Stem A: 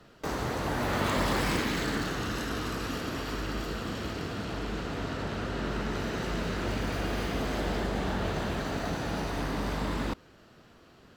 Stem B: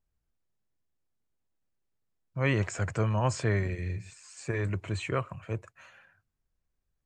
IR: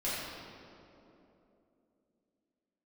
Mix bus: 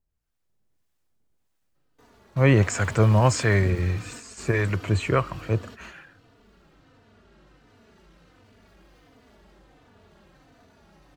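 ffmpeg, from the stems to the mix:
-filter_complex "[0:a]asoftclip=type=hard:threshold=0.0316,asplit=2[s0][s1];[s1]adelay=3.3,afreqshift=-1.4[s2];[s0][s2]amix=inputs=2:normalize=1,adelay=1750,volume=0.531[s3];[1:a]dynaudnorm=f=130:g=7:m=2.82,acrossover=split=790[s4][s5];[s4]aeval=exprs='val(0)*(1-0.5/2+0.5/2*cos(2*PI*1.6*n/s))':c=same[s6];[s5]aeval=exprs='val(0)*(1-0.5/2-0.5/2*cos(2*PI*1.6*n/s))':c=same[s7];[s6][s7]amix=inputs=2:normalize=0,volume=1.26,asplit=2[s8][s9];[s9]apad=whole_len=569778[s10];[s3][s10]sidechaingate=range=0.2:threshold=0.00708:ratio=16:detection=peak[s11];[s11][s8]amix=inputs=2:normalize=0"

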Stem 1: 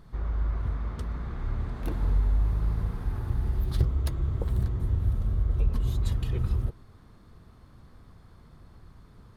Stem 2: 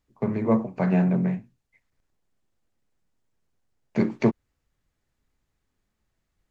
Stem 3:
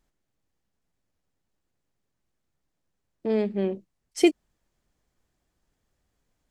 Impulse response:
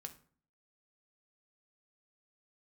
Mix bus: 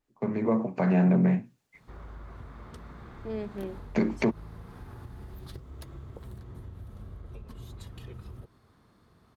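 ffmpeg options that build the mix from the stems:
-filter_complex "[0:a]highpass=f=190:p=1,acompressor=threshold=0.0158:ratio=6,adelay=1750,volume=0.668[s0];[1:a]highpass=140,dynaudnorm=f=110:g=9:m=3.98,adynamicequalizer=threshold=0.0112:dfrequency=2900:dqfactor=0.7:tfrequency=2900:tqfactor=0.7:attack=5:release=100:ratio=0.375:range=2:mode=cutabove:tftype=highshelf,volume=0.631,asplit=2[s1][s2];[2:a]volume=0.299[s3];[s2]apad=whole_len=286829[s4];[s3][s4]sidechaincompress=threshold=0.0355:ratio=8:attack=16:release=686[s5];[s0][s1][s5]amix=inputs=3:normalize=0,alimiter=limit=0.178:level=0:latency=1:release=134"

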